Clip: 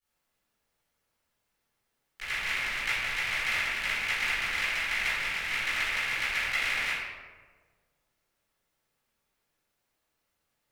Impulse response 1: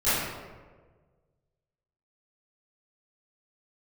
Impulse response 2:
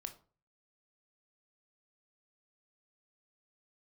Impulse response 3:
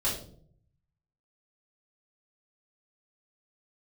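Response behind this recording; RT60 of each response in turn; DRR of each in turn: 1; 1.5, 0.40, 0.55 s; -18.0, 6.0, -9.0 dB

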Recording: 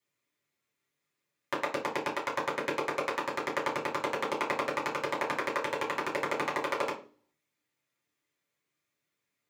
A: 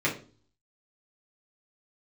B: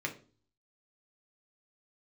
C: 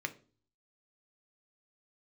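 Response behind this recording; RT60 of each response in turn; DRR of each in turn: A; 0.40, 0.40, 0.40 s; -5.5, 1.5, 7.5 dB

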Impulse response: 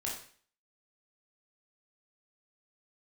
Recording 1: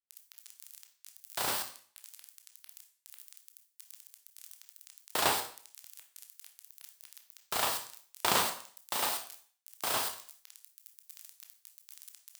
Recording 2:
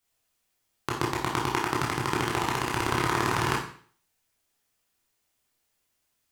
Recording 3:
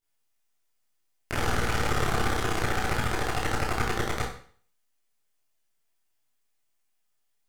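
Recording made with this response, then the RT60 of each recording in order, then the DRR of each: 2; 0.45, 0.45, 0.45 s; 4.0, -3.5, -8.5 dB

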